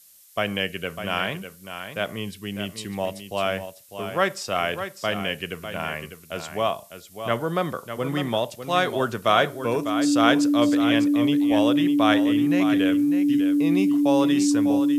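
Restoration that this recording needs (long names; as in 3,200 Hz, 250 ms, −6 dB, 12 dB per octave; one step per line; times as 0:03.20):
notch filter 290 Hz, Q 30
broadband denoise 25 dB, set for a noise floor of −43 dBFS
echo removal 600 ms −9.5 dB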